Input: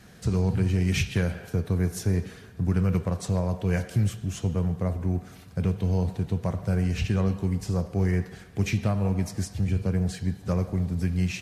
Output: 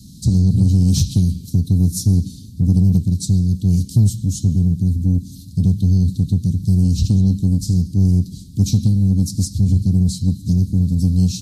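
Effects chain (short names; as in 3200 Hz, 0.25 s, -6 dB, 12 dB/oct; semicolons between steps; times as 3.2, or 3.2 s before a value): Chebyshev band-stop 280–4000 Hz, order 4; in parallel at -5.5 dB: soft clip -24.5 dBFS, distortion -11 dB; on the sum: gain +8.5 dB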